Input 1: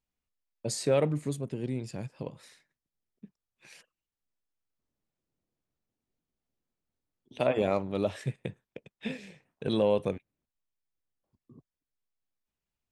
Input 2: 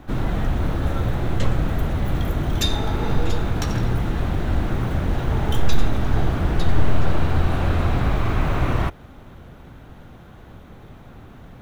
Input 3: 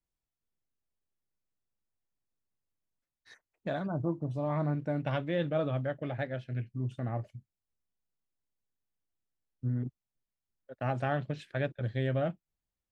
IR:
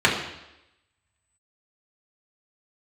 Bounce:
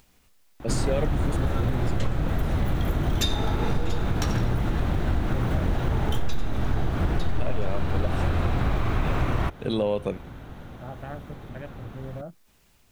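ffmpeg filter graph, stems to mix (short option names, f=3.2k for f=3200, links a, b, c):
-filter_complex "[0:a]acompressor=mode=upward:threshold=-43dB:ratio=2.5,volume=3dB[a];[1:a]adelay=600,volume=1.5dB[b];[2:a]afwtdn=0.0141,volume=-7.5dB[c];[a][b][c]amix=inputs=3:normalize=0,acompressor=threshold=-20dB:ratio=4"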